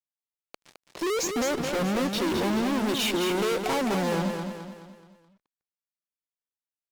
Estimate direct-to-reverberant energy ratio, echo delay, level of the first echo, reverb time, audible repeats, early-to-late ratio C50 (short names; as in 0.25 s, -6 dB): none, 0.213 s, -6.0 dB, none, 5, none